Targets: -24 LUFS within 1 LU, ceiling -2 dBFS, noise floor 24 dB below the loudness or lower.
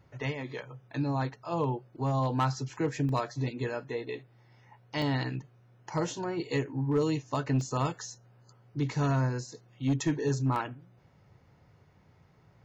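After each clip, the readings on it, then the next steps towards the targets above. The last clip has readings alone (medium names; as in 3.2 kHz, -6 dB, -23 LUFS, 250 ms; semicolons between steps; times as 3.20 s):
clipped samples 0.3%; clipping level -20.5 dBFS; dropouts 4; longest dropout 1.4 ms; loudness -32.0 LUFS; peak level -20.5 dBFS; loudness target -24.0 LUFS
-> clip repair -20.5 dBFS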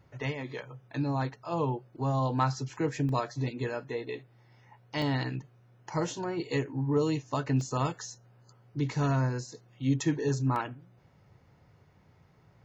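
clipped samples 0.0%; dropouts 4; longest dropout 1.4 ms
-> interpolate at 3.09/5.02/7.61/10.56 s, 1.4 ms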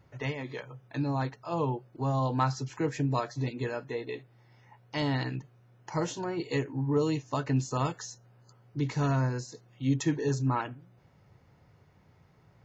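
dropouts 0; loudness -31.5 LUFS; peak level -15.0 dBFS; loudness target -24.0 LUFS
-> trim +7.5 dB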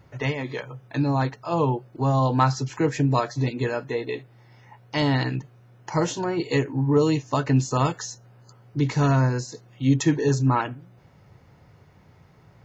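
loudness -24.0 LUFS; peak level -7.5 dBFS; noise floor -54 dBFS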